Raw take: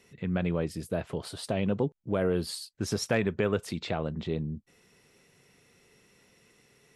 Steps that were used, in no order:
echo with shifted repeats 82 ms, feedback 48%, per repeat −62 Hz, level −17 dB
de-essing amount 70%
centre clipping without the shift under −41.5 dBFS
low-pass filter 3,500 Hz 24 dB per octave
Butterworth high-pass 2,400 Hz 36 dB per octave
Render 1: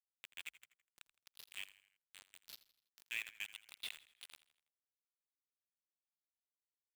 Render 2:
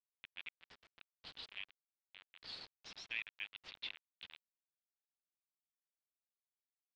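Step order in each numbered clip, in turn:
Butterworth high-pass, then de-essing, then low-pass filter, then centre clipping without the shift, then echo with shifted repeats
Butterworth high-pass, then echo with shifted repeats, then centre clipping without the shift, then de-essing, then low-pass filter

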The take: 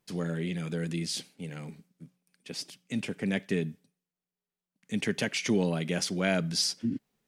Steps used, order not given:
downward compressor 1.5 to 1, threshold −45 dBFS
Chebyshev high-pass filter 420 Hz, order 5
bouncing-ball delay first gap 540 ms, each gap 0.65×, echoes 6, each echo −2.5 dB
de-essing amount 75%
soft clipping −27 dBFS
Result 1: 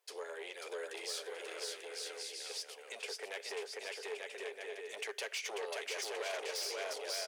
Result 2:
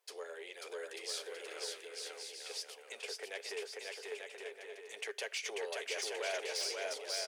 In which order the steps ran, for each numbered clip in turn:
bouncing-ball delay, then soft clipping, then Chebyshev high-pass filter, then downward compressor, then de-essing
downward compressor, then soft clipping, then bouncing-ball delay, then de-essing, then Chebyshev high-pass filter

